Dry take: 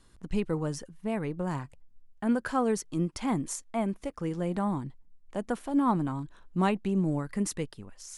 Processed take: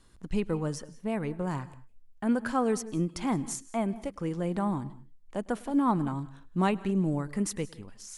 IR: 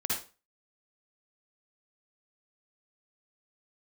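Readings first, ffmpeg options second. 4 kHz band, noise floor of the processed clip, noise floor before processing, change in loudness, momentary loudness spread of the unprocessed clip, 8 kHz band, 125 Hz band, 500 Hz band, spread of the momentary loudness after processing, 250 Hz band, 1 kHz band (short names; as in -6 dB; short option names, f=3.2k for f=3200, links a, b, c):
0.0 dB, -55 dBFS, -58 dBFS, 0.0 dB, 10 LU, 0.0 dB, 0.0 dB, 0.0 dB, 10 LU, 0.0 dB, 0.0 dB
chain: -filter_complex "[0:a]asplit=2[a][b];[1:a]atrim=start_sample=2205,atrim=end_sample=6615,adelay=104[c];[b][c]afir=irnorm=-1:irlink=0,volume=-24dB[d];[a][d]amix=inputs=2:normalize=0"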